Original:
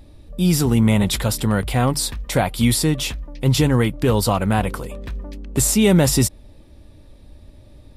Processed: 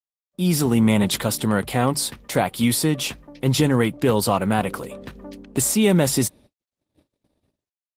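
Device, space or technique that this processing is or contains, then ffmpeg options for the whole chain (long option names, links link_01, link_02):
video call: -af "highpass=150,dynaudnorm=framelen=140:gausssize=7:maxgain=8dB,agate=range=-58dB:threshold=-41dB:ratio=16:detection=peak,volume=-3.5dB" -ar 48000 -c:a libopus -b:a 20k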